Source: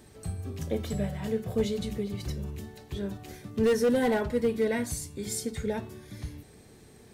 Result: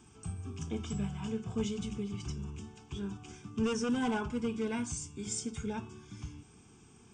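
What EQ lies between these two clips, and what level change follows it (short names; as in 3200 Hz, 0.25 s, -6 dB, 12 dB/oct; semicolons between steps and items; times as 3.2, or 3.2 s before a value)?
brick-wall FIR low-pass 9100 Hz; low shelf 110 Hz -8 dB; fixed phaser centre 2800 Hz, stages 8; 0.0 dB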